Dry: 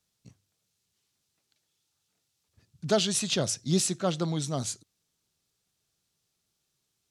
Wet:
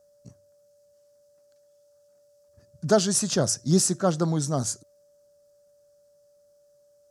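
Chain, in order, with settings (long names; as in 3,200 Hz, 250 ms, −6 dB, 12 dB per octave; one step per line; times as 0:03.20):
steady tone 580 Hz −63 dBFS
flat-topped bell 2,900 Hz −12 dB 1.2 octaves
level +5 dB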